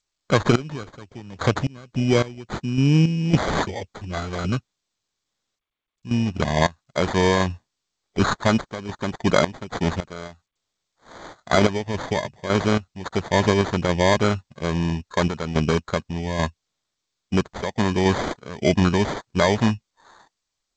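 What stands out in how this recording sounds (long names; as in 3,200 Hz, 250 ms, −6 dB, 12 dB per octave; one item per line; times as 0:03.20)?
sample-and-hold tremolo 3.6 Hz, depth 95%
aliases and images of a low sample rate 2,700 Hz, jitter 0%
G.722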